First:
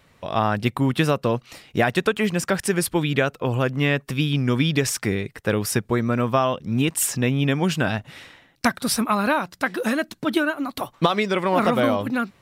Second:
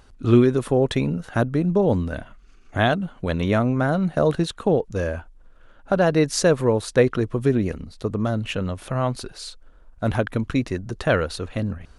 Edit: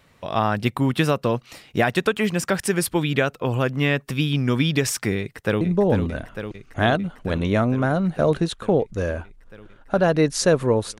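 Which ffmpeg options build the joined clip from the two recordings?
-filter_complex "[0:a]apad=whole_dur=10.99,atrim=end=10.99,atrim=end=5.612[a];[1:a]atrim=start=1.588:end=6.97[b];[a][b]acrossfade=d=0.004:c1=hsin:c2=hsin,asplit=2[c][d];[d]afade=t=in:st=5.19:d=0.01,afade=t=out:st=5.61:d=0.01,aecho=0:1:450|900|1350|1800|2250|2700|3150|3600|4050|4500|4950|5400:0.421697|0.337357|0.269886|0.215909|0.172727|0.138182|0.110545|0.0884362|0.0707489|0.0565991|0.0452793|0.0362235[e];[c][e]amix=inputs=2:normalize=0"

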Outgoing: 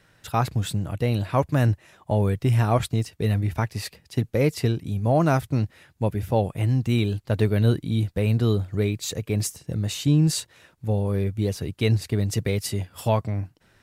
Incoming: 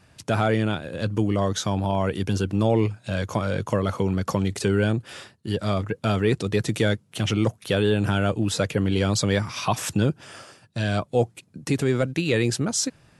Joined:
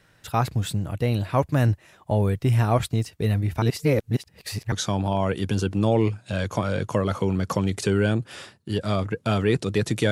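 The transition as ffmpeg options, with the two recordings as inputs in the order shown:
-filter_complex "[0:a]apad=whole_dur=10.11,atrim=end=10.11,asplit=2[a][b];[a]atrim=end=3.622[c];[b]atrim=start=3.618:end=4.722,asetpts=PTS-STARTPTS,areverse[d];[1:a]atrim=start=1.498:end=6.89[e];[c][d]acrossfade=d=0.004:c1=hsin:c2=hsin[f];[f][e]acrossfade=d=0.004:c1=hsin:c2=hsin"

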